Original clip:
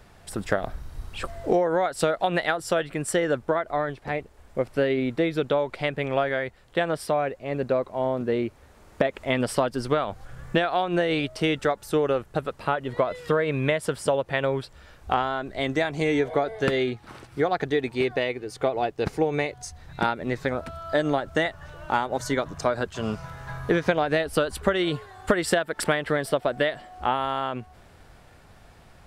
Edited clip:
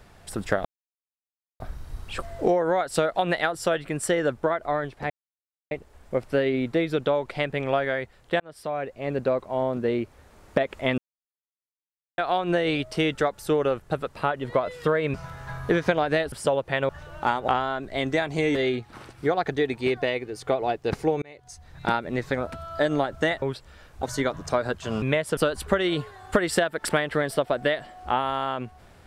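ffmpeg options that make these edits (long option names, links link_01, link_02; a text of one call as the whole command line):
ffmpeg -i in.wav -filter_complex "[0:a]asplit=16[link_01][link_02][link_03][link_04][link_05][link_06][link_07][link_08][link_09][link_10][link_11][link_12][link_13][link_14][link_15][link_16];[link_01]atrim=end=0.65,asetpts=PTS-STARTPTS,afade=type=out:start_time=0.646:duration=0.004:curve=hsin,apad=pad_dur=0.95[link_17];[link_02]atrim=start=0.65:end=4.15,asetpts=PTS-STARTPTS,afade=type=in:duration=0.004:curve=hsin,afade=type=out:start_time=3.496:duration=0.004:curve=hsin,apad=pad_dur=0.61[link_18];[link_03]atrim=start=4.15:end=6.84,asetpts=PTS-STARTPTS,afade=type=in:duration=0.004:curve=hsin,afade=type=out:start_time=2.686:duration=0.004:curve=hsin[link_19];[link_04]atrim=start=6.84:end=9.42,asetpts=PTS-STARTPTS,afade=type=in:duration=0.61,afade=type=out:start_time=2.576:duration=0.004:curve=hsin[link_20];[link_05]atrim=start=9.42:end=10.62,asetpts=PTS-STARTPTS,volume=0[link_21];[link_06]atrim=start=10.62:end=13.582,asetpts=PTS-STARTPTS,afade=type=in:duration=0.004:curve=hsin[link_22];[link_07]atrim=start=23.138:end=24.322[link_23];[link_08]atrim=start=13.928:end=14.502[link_24];[link_09]atrim=start=21.558:end=22.152[link_25];[link_10]atrim=start=15.108:end=16.182[link_26];[link_11]atrim=start=16.688:end=19.36,asetpts=PTS-STARTPTS,afade=type=out:start_time=2.668:duration=0.004:curve=hsin[link_27];[link_12]atrim=start=19.36:end=21.562,asetpts=PTS-STARTPTS,afade=type=in:duration=0.65[link_28];[link_13]atrim=start=14.498:end=15.112[link_29];[link_14]atrim=start=22.148:end=23.142[link_30];[link_15]atrim=start=13.578:end=13.932[link_31];[link_16]atrim=start=24.318[link_32];[link_17][link_18][link_19][link_20][link_21][link_22]concat=n=6:v=0:a=1[link_33];[link_33][link_23]acrossfade=duration=0.004:curve1=hsin:curve2=hsin[link_34];[link_34][link_24]acrossfade=duration=0.004:curve1=hsin:curve2=hsin[link_35];[link_35][link_25]acrossfade=duration=0.004:curve1=hsin:curve2=hsin[link_36];[link_36][link_26]acrossfade=duration=0.004:curve1=hsin:curve2=hsin[link_37];[link_27][link_28]concat=n=2:v=0:a=1[link_38];[link_37][link_38]acrossfade=duration=0.004:curve1=hsin:curve2=hsin[link_39];[link_39][link_29]acrossfade=duration=0.004:curve1=hsin:curve2=hsin[link_40];[link_40][link_30]acrossfade=duration=0.004:curve1=hsin:curve2=hsin[link_41];[link_41][link_31]acrossfade=duration=0.004:curve1=hsin:curve2=hsin[link_42];[link_42][link_32]acrossfade=duration=0.004:curve1=hsin:curve2=hsin" out.wav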